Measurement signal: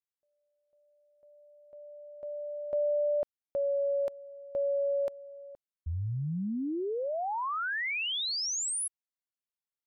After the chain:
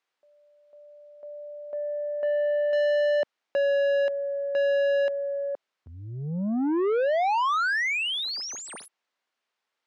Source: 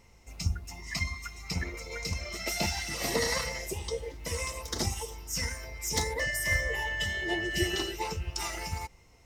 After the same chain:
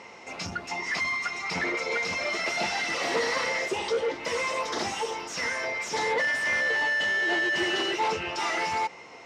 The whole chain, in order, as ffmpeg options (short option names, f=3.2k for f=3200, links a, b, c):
-filter_complex "[0:a]asplit=2[a][b];[b]highpass=f=720:p=1,volume=31dB,asoftclip=type=tanh:threshold=-14dB[c];[a][c]amix=inputs=2:normalize=0,lowpass=f=1.8k:p=1,volume=-6dB,highpass=190,lowpass=6.1k,volume=-2.5dB"